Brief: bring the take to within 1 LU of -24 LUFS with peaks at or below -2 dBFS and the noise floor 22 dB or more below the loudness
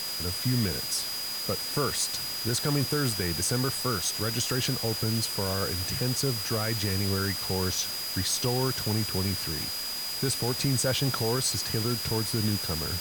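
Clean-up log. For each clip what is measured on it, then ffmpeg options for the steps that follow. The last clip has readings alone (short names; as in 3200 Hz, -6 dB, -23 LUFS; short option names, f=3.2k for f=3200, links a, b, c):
steady tone 4900 Hz; tone level -33 dBFS; noise floor -34 dBFS; noise floor target -50 dBFS; loudness -27.5 LUFS; peak -14.5 dBFS; loudness target -24.0 LUFS
-> -af "bandreject=f=4.9k:w=30"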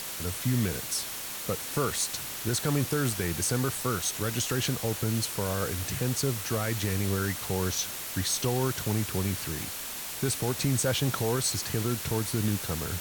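steady tone none; noise floor -37 dBFS; noise floor target -51 dBFS
-> -af "afftdn=nr=14:nf=-37"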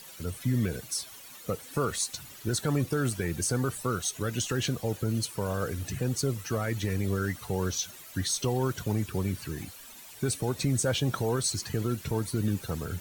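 noise floor -48 dBFS; noise floor target -53 dBFS
-> -af "afftdn=nr=6:nf=-48"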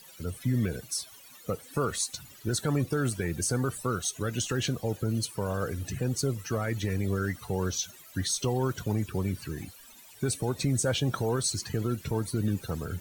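noise floor -52 dBFS; noise floor target -53 dBFS
-> -af "afftdn=nr=6:nf=-52"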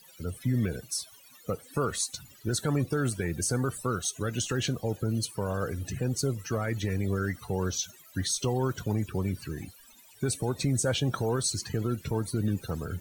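noise floor -55 dBFS; loudness -30.5 LUFS; peak -17.0 dBFS; loudness target -24.0 LUFS
-> -af "volume=6.5dB"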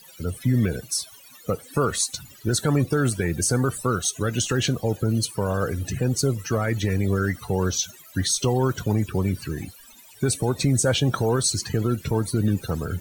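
loudness -24.0 LUFS; peak -10.5 dBFS; noise floor -48 dBFS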